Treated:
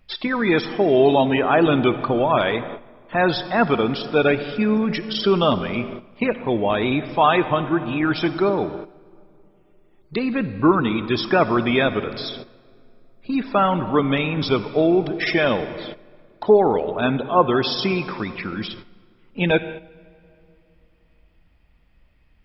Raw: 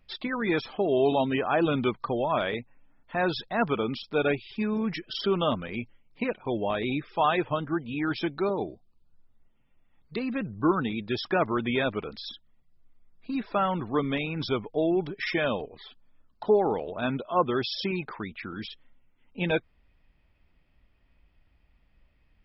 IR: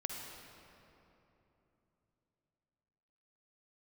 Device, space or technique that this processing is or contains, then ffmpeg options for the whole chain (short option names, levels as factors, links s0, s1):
keyed gated reverb: -filter_complex "[0:a]asplit=3[s0][s1][s2];[1:a]atrim=start_sample=2205[s3];[s1][s3]afir=irnorm=-1:irlink=0[s4];[s2]apad=whole_len=990038[s5];[s4][s5]sidechaingate=range=0.251:threshold=0.00316:ratio=16:detection=peak,volume=0.501[s6];[s0][s6]amix=inputs=2:normalize=0,volume=1.78"